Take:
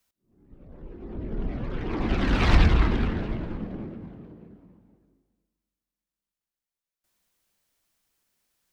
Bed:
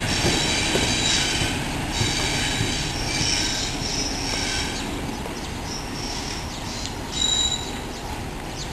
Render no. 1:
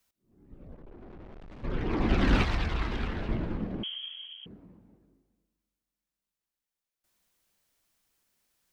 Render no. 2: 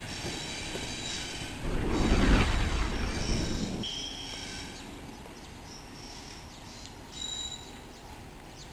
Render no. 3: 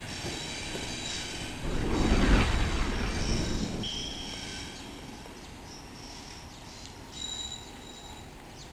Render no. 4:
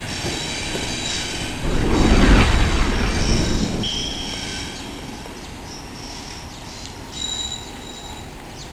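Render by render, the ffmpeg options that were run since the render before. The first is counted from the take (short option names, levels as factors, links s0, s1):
-filter_complex "[0:a]asplit=3[s0][s1][s2];[s0]afade=t=out:st=0.74:d=0.02[s3];[s1]aeval=exprs='(tanh(200*val(0)+0.6)-tanh(0.6))/200':c=same,afade=t=in:st=0.74:d=0.02,afade=t=out:st=1.63:d=0.02[s4];[s2]afade=t=in:st=1.63:d=0.02[s5];[s3][s4][s5]amix=inputs=3:normalize=0,asettb=1/sr,asplit=3[s6][s7][s8];[s6]atrim=end=2.424[s9];[s7]atrim=start=2.42:end=3.29,asetpts=PTS-STARTPTS,afade=t=in:d=0.004:c=qsin,afade=t=out:st=0.866:d=0.004:c=qsin,acrossover=split=83|460|2200|5200[s10][s11][s12][s13][s14];[s10]acompressor=threshold=0.0251:ratio=3[s15];[s11]acompressor=threshold=0.01:ratio=3[s16];[s12]acompressor=threshold=0.0112:ratio=3[s17];[s13]acompressor=threshold=0.00631:ratio=3[s18];[s14]acompressor=threshold=0.00158:ratio=3[s19];[s15][s16][s17][s18][s19]amix=inputs=5:normalize=0[s20];[s8]atrim=start=3.286[s21];[s9][s20]acrossfade=d=0.004:c1=hsin:c2=qsin[s22];[s22][s21]acrossfade=d=0.004:c1=qsin:c2=hsin,asettb=1/sr,asplit=3[s23][s24][s25];[s23]atrim=end=3.834[s26];[s24]atrim=start=3.83:end=4.46,asetpts=PTS-STARTPTS,afade=t=in:d=0.004:c=qsin,afade=t=out:st=0.626:d=0.004:c=qsin,lowpass=f=2900:t=q:w=0.5098,lowpass=f=2900:t=q:w=0.6013,lowpass=f=2900:t=q:w=0.9,lowpass=f=2900:t=q:w=2.563,afreqshift=-3400[s27];[s25]atrim=start=4.456[s28];[s26][s27]acrossfade=d=0.004:c1=hsin:c2=qsin[s29];[s29][s28]acrossfade=d=0.004:c1=qsin:c2=hsin"
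-filter_complex "[1:a]volume=0.168[s0];[0:a][s0]amix=inputs=2:normalize=0"
-filter_complex "[0:a]asplit=2[s0][s1];[s1]adelay=45,volume=0.266[s2];[s0][s2]amix=inputs=2:normalize=0,aecho=1:1:652:0.224"
-af "volume=3.55,alimiter=limit=0.891:level=0:latency=1"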